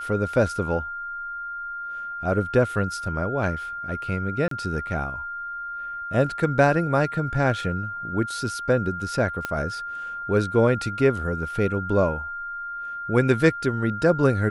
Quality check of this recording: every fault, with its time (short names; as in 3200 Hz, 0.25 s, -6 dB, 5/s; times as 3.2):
tone 1400 Hz -30 dBFS
4.48–4.51 gap 33 ms
9.45 pop -13 dBFS